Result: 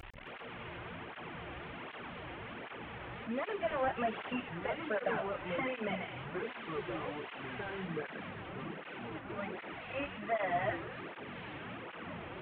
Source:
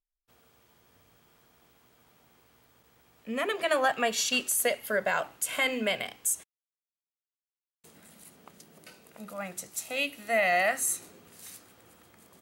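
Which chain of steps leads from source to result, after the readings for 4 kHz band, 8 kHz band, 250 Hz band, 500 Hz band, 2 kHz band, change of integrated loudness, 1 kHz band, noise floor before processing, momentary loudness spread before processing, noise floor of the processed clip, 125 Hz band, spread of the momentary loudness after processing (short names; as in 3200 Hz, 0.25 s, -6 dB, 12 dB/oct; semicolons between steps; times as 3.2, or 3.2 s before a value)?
-13.0 dB, under -40 dB, -1.0 dB, -5.0 dB, -9.0 dB, -11.5 dB, -5.0 dB, under -85 dBFS, 16 LU, -48 dBFS, +7.5 dB, 11 LU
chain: delta modulation 16 kbps, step -34.5 dBFS; echoes that change speed 0.136 s, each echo -5 st, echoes 3, each echo -6 dB; tape flanging out of phase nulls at 1.3 Hz, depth 4.9 ms; gain -2.5 dB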